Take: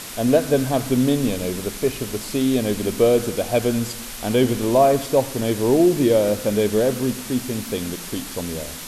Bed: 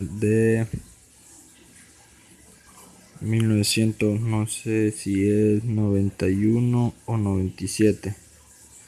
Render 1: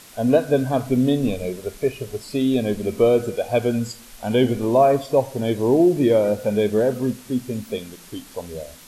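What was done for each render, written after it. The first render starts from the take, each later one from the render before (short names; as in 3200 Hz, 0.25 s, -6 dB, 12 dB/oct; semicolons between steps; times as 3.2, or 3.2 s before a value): noise print and reduce 11 dB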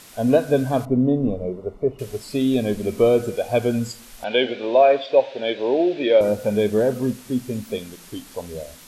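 0.85–1.99 polynomial smoothing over 65 samples; 4.24–6.21 speaker cabinet 420–4500 Hz, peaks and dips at 560 Hz +5 dB, 1100 Hz -6 dB, 1600 Hz +5 dB, 2500 Hz +9 dB, 3600 Hz +9 dB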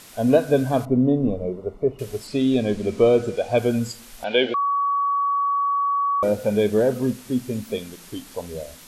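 2.27–3.58 LPF 7400 Hz; 4.54–6.23 bleep 1130 Hz -18.5 dBFS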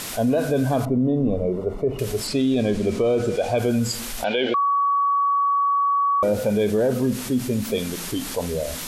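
limiter -13.5 dBFS, peak gain reduction 8.5 dB; fast leveller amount 50%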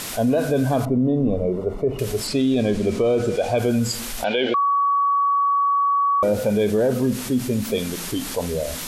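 gain +1 dB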